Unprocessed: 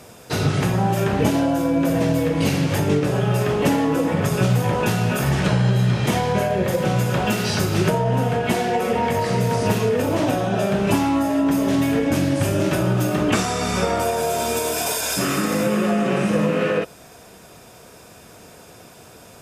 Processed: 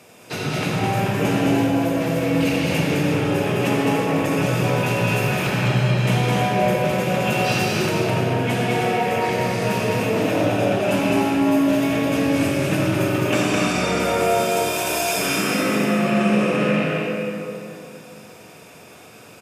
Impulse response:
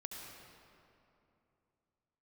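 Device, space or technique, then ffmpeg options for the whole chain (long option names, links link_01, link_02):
stadium PA: -filter_complex "[0:a]highpass=130,equalizer=frequency=2500:width_type=o:width=0.54:gain=7.5,aecho=1:1:209.9|247.8:0.708|0.355[link_01];[1:a]atrim=start_sample=2205[link_02];[link_01][link_02]afir=irnorm=-1:irlink=0"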